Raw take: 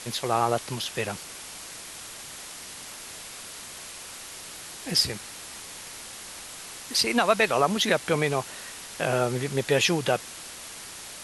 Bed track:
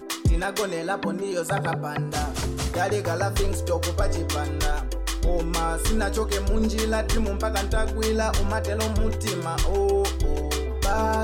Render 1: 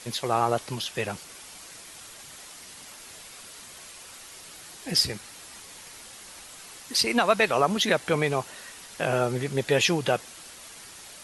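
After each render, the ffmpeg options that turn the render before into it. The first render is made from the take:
-af "afftdn=nr=6:nf=-42"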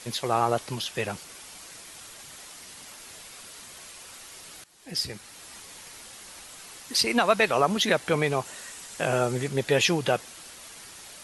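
-filter_complex "[0:a]asettb=1/sr,asplit=3[a][b][c];[a]atrim=end=8.454[d];[b]atrim=start=8.45:end=9.48,asetpts=PTS-STARTPTS,afade=t=in:d=0.004:c=qsin,afade=t=out:st=1.026:d=0.004:c=qsin,equalizer=f=7.6k:t=o:w=0.53:g=6.5[e];[c]atrim=start=9.476[f];[d][e]acrossfade=d=0.004:c1=hsin:c2=qsin[g];[g][f]acrossfade=d=0.004:c1=qsin:c2=hsin,asplit=2[h][i];[h]atrim=end=4.64,asetpts=PTS-STARTPTS,afade=t=out:st=4.636:d=0.004:c=hsin:silence=0.11885[j];[i]atrim=start=4.64,asetpts=PTS-STARTPTS,afade=t=in:d=0.87:silence=0.11885[k];[j][k]concat=n=2:v=0:a=1"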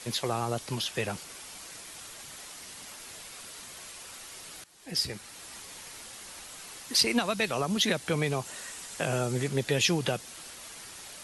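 -filter_complex "[0:a]acrossover=split=280|3000[a][b][c];[b]acompressor=threshold=-29dB:ratio=6[d];[a][d][c]amix=inputs=3:normalize=0"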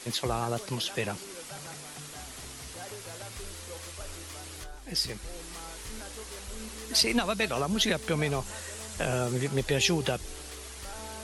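-filter_complex "[1:a]volume=-20dB[a];[0:a][a]amix=inputs=2:normalize=0"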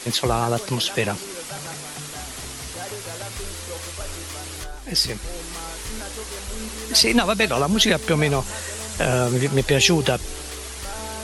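-af "volume=9dB,alimiter=limit=-3dB:level=0:latency=1"

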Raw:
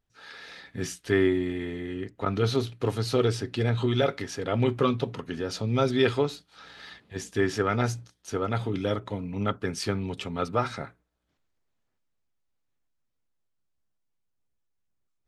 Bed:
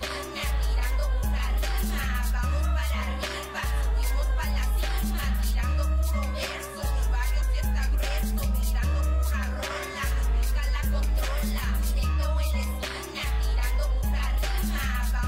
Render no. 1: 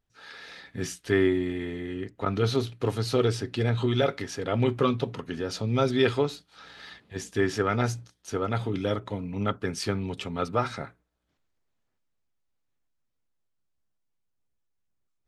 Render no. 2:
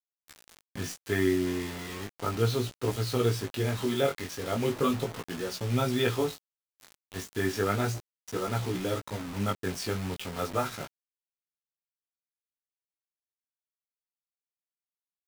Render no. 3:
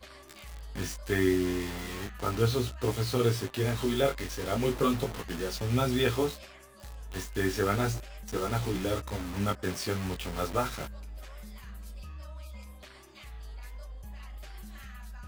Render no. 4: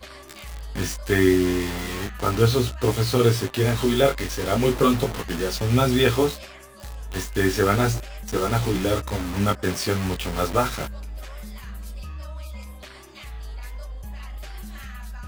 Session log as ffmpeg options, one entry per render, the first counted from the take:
-af anull
-af "acrusher=bits=5:mix=0:aa=0.000001,flanger=delay=16:depth=6.3:speed=0.35"
-filter_complex "[1:a]volume=-18dB[a];[0:a][a]amix=inputs=2:normalize=0"
-af "volume=8dB"

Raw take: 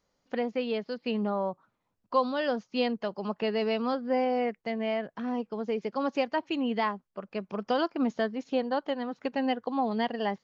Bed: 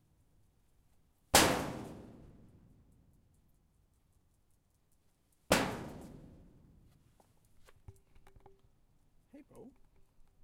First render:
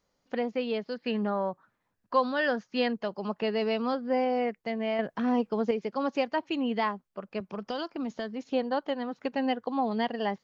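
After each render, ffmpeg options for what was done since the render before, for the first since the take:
-filter_complex "[0:a]asettb=1/sr,asplit=3[a][b][c];[a]atrim=end=0.954[d];[b]atrim=start=0.95:end=2.93,asetpts=PTS-STARTPTS,afade=t=in:d=0.004:c=qsin,afade=t=out:st=1.976:d=0.004:c=qsin,equalizer=f=1.7k:t=o:w=0.4:g=10.5[e];[c]atrim=start=2.926[f];[d][e]acrossfade=d=0.004:c1=hsin:c2=qsin[g];[g][f]acrossfade=d=0.004:c1=qsin:c2=hsin,asettb=1/sr,asplit=3[h][i][j];[h]atrim=end=7.404[k];[i]atrim=start=7.4:end=8.5,asetpts=PTS-STARTPTS,afade=t=in:d=0.004:c=qsin,afade=t=out:st=1.096:d=0.004:c=qsin,acrossover=split=120|3000[l][m][n];[m]acompressor=threshold=-30dB:ratio=6:attack=3.2:release=140:knee=2.83:detection=peak[o];[l][o][n]amix=inputs=3:normalize=0[p];[j]atrim=start=8.496[q];[k][p]acrossfade=d=0.004:c1=hsin:c2=qsin[r];[r][q]acrossfade=d=0.004:c1=qsin:c2=hsin,asplit=3[s][t][u];[s]atrim=end=4.992[v];[t]atrim=start=4.988:end=5.712,asetpts=PTS-STARTPTS,volume=5.5dB[w];[u]atrim=start=5.708[x];[v][w]acrossfade=d=0.004:c1=hsin:c2=hsin[y];[y][x]acrossfade=d=0.004:c1=hsin:c2=hsin"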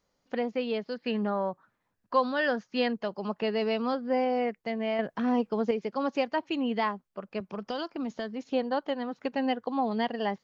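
-af anull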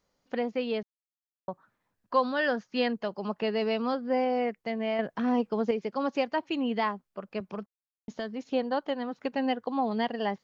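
-filter_complex "[0:a]asplit=5[a][b][c][d][e];[a]atrim=end=0.83,asetpts=PTS-STARTPTS,afade=t=out:st=0.826:d=0.004:c=hsin[f];[b]atrim=start=0.83:end=1.48,asetpts=PTS-STARTPTS,volume=0[g];[c]atrim=start=1.48:end=7.66,asetpts=PTS-STARTPTS,afade=t=in:d=0.004:c=hsin,afade=t=out:st=6.176:d=0.004:c=hsin[h];[d]atrim=start=7.66:end=8.08,asetpts=PTS-STARTPTS,volume=0[i];[e]atrim=start=8.08,asetpts=PTS-STARTPTS,afade=t=in:d=0.004:c=hsin[j];[f][g][h][i][j]concat=n=5:v=0:a=1"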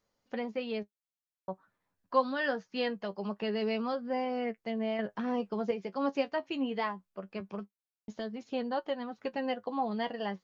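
-af "flanger=delay=8.7:depth=2.6:regen=43:speed=0.23:shape=triangular"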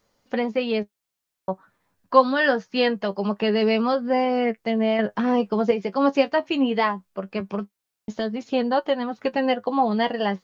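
-af "volume=11.5dB"

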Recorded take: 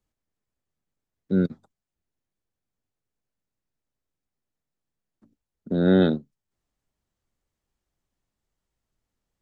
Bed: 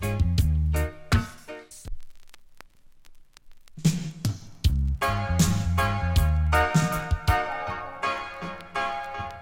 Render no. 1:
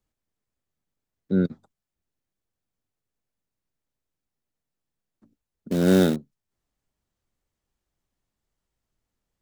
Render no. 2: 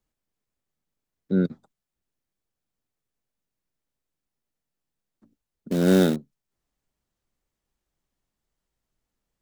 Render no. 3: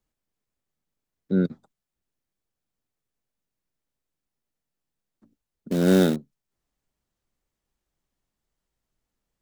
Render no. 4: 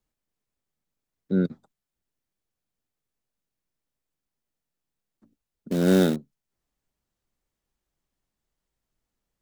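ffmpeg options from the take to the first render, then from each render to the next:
-filter_complex "[0:a]asettb=1/sr,asplit=3[a][b][c];[a]atrim=end=5.714[d];[b]atrim=start=5.71:end=6.16,asetpts=PTS-STARTPTS,afade=t=in:d=0.004:c=qsin,afade=t=out:st=0.446:d=0.004:c=qsin,acrusher=bits=4:mode=log:mix=0:aa=0.000001[e];[c]atrim=start=6.156[f];[d][e]acrossfade=d=0.004:c1=hsin:c2=qsin[g];[g][f]acrossfade=d=0.004:c1=qsin:c2=hsin"
-af "equalizer=f=90:w=4.2:g=-8"
-af anull
-af "volume=-1dB"

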